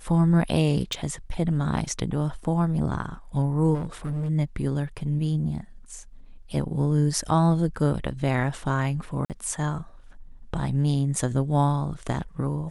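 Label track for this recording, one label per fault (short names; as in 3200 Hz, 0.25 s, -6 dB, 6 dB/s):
0.930000	0.930000	pop
3.740000	4.300000	clipped -25.5 dBFS
9.250000	9.300000	gap 48 ms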